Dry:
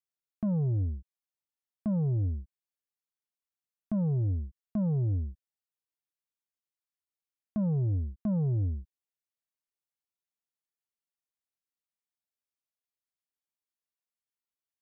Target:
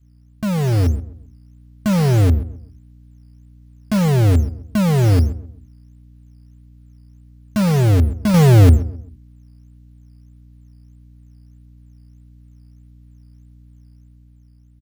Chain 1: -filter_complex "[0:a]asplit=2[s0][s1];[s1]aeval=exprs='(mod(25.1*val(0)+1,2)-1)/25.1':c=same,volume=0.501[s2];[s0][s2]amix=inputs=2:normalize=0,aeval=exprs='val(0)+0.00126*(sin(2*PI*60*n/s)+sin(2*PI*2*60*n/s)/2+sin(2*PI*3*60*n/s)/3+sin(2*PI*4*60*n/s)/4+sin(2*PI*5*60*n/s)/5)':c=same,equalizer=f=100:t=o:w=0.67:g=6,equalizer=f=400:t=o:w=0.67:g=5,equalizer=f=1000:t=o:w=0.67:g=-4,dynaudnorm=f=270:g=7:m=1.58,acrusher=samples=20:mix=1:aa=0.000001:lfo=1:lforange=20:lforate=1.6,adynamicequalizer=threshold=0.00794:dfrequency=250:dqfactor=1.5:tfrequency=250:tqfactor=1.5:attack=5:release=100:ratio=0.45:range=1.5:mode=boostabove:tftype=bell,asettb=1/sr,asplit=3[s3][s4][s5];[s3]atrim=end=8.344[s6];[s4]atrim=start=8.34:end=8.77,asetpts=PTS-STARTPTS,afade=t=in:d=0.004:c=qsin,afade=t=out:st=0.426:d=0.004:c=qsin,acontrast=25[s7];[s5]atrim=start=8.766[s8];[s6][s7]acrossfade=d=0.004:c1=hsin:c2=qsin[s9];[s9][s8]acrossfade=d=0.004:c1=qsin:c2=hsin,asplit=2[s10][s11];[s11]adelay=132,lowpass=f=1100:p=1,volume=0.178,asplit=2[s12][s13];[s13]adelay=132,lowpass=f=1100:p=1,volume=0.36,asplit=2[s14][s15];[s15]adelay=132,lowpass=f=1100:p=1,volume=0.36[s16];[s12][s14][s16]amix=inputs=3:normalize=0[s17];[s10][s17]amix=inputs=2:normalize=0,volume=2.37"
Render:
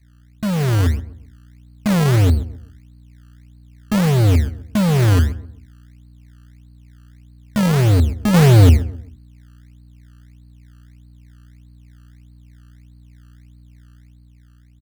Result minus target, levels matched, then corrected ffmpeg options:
decimation with a swept rate: distortion +8 dB
-filter_complex "[0:a]asplit=2[s0][s1];[s1]aeval=exprs='(mod(25.1*val(0)+1,2)-1)/25.1':c=same,volume=0.501[s2];[s0][s2]amix=inputs=2:normalize=0,aeval=exprs='val(0)+0.00126*(sin(2*PI*60*n/s)+sin(2*PI*2*60*n/s)/2+sin(2*PI*3*60*n/s)/3+sin(2*PI*4*60*n/s)/4+sin(2*PI*5*60*n/s)/5)':c=same,equalizer=f=100:t=o:w=0.67:g=6,equalizer=f=400:t=o:w=0.67:g=5,equalizer=f=1000:t=o:w=0.67:g=-4,dynaudnorm=f=270:g=7:m=1.58,acrusher=samples=6:mix=1:aa=0.000001:lfo=1:lforange=6:lforate=1.6,adynamicequalizer=threshold=0.00794:dfrequency=250:dqfactor=1.5:tfrequency=250:tqfactor=1.5:attack=5:release=100:ratio=0.45:range=1.5:mode=boostabove:tftype=bell,asettb=1/sr,asplit=3[s3][s4][s5];[s3]atrim=end=8.344[s6];[s4]atrim=start=8.34:end=8.77,asetpts=PTS-STARTPTS,afade=t=in:d=0.004:c=qsin,afade=t=out:st=0.426:d=0.004:c=qsin,acontrast=25[s7];[s5]atrim=start=8.766[s8];[s6][s7]acrossfade=d=0.004:c1=hsin:c2=qsin[s9];[s9][s8]acrossfade=d=0.004:c1=qsin:c2=hsin,asplit=2[s10][s11];[s11]adelay=132,lowpass=f=1100:p=1,volume=0.178,asplit=2[s12][s13];[s13]adelay=132,lowpass=f=1100:p=1,volume=0.36,asplit=2[s14][s15];[s15]adelay=132,lowpass=f=1100:p=1,volume=0.36[s16];[s12][s14][s16]amix=inputs=3:normalize=0[s17];[s10][s17]amix=inputs=2:normalize=0,volume=2.37"

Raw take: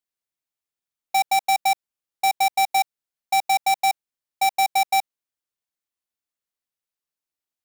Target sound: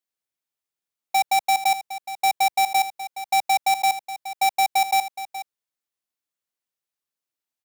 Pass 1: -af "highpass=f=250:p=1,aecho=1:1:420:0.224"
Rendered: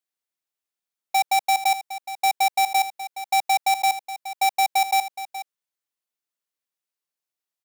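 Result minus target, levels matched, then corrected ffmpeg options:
125 Hz band -3.5 dB
-af "highpass=f=84:p=1,aecho=1:1:420:0.224"

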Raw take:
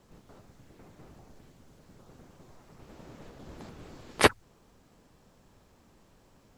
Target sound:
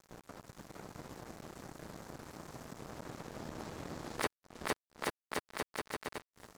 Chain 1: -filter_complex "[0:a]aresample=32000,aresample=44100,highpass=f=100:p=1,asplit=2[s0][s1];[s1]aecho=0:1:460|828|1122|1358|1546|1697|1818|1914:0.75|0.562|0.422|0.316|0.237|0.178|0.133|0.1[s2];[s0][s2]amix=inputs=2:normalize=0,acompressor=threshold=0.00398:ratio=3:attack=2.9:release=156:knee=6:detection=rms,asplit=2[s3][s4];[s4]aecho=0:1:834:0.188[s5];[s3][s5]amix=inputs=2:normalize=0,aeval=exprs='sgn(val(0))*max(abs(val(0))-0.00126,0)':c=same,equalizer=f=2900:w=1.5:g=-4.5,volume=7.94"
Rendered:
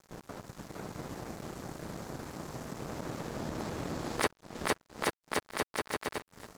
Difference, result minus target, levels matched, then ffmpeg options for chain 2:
compression: peak gain reduction -4.5 dB
-filter_complex "[0:a]aresample=32000,aresample=44100,highpass=f=100:p=1,asplit=2[s0][s1];[s1]aecho=0:1:460|828|1122|1358|1546|1697|1818|1914:0.75|0.562|0.422|0.316|0.237|0.178|0.133|0.1[s2];[s0][s2]amix=inputs=2:normalize=0,acompressor=threshold=0.00178:ratio=3:attack=2.9:release=156:knee=6:detection=rms,asplit=2[s3][s4];[s4]aecho=0:1:834:0.188[s5];[s3][s5]amix=inputs=2:normalize=0,aeval=exprs='sgn(val(0))*max(abs(val(0))-0.00126,0)':c=same,equalizer=f=2900:w=1.5:g=-4.5,volume=7.94"

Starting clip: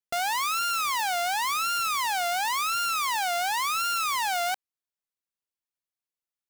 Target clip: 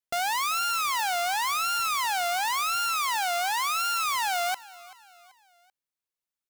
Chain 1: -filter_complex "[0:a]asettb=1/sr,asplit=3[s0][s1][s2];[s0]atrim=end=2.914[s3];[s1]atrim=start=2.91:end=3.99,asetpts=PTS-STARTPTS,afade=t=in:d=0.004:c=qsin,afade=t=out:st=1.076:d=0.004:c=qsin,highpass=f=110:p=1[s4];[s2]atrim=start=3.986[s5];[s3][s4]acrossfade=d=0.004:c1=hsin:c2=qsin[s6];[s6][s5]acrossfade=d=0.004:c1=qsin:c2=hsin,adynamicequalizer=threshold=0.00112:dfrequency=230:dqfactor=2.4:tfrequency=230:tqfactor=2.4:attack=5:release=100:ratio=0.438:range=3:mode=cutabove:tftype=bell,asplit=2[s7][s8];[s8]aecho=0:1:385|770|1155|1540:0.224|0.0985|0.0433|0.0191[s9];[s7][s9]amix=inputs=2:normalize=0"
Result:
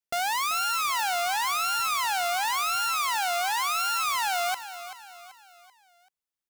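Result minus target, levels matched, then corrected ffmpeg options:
echo-to-direct +7.5 dB
-filter_complex "[0:a]asettb=1/sr,asplit=3[s0][s1][s2];[s0]atrim=end=2.914[s3];[s1]atrim=start=2.91:end=3.99,asetpts=PTS-STARTPTS,afade=t=in:d=0.004:c=qsin,afade=t=out:st=1.076:d=0.004:c=qsin,highpass=f=110:p=1[s4];[s2]atrim=start=3.986[s5];[s3][s4]acrossfade=d=0.004:c1=hsin:c2=qsin[s6];[s6][s5]acrossfade=d=0.004:c1=qsin:c2=hsin,adynamicequalizer=threshold=0.00112:dfrequency=230:dqfactor=2.4:tfrequency=230:tqfactor=2.4:attack=5:release=100:ratio=0.438:range=3:mode=cutabove:tftype=bell,asplit=2[s7][s8];[s8]aecho=0:1:385|770|1155:0.0944|0.0415|0.0183[s9];[s7][s9]amix=inputs=2:normalize=0"

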